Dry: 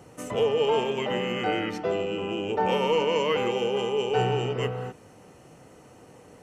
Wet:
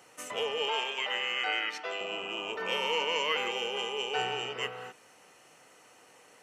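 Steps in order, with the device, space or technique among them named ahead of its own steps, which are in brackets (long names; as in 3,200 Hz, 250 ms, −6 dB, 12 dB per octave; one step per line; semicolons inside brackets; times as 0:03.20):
0:00.68–0:02.01: meter weighting curve A
0:02.03–0:02.93: healed spectral selection 590–1,300 Hz both
filter by subtraction (in parallel: low-pass filter 2,200 Hz 12 dB per octave + polarity inversion)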